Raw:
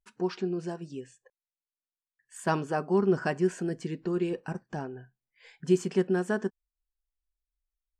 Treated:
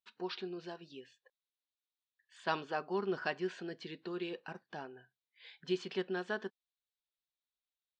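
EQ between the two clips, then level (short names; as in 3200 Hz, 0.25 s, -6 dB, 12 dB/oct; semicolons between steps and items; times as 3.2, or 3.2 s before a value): HPF 650 Hz 6 dB/oct; ladder low-pass 4200 Hz, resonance 65%; +6.5 dB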